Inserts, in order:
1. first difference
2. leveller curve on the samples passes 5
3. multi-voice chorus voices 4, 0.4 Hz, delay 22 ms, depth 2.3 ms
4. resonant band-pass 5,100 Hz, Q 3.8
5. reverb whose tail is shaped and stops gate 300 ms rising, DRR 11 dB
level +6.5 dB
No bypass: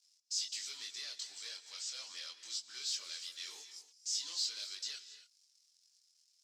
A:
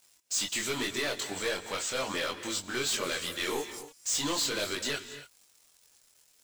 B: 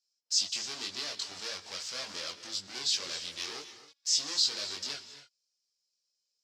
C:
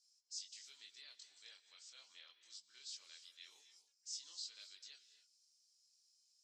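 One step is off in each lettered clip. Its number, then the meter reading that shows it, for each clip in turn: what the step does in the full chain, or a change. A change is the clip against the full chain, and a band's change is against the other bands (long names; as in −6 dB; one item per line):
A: 4, 500 Hz band +19.0 dB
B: 1, 500 Hz band +10.0 dB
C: 2, change in crest factor +2.5 dB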